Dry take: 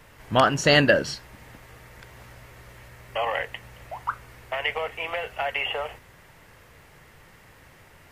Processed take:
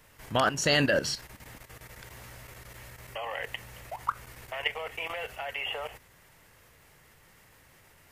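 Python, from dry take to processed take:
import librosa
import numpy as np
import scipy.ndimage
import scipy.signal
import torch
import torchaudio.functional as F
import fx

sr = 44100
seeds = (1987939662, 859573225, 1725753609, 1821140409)

y = fx.level_steps(x, sr, step_db=12)
y = fx.high_shelf(y, sr, hz=4700.0, db=9.0)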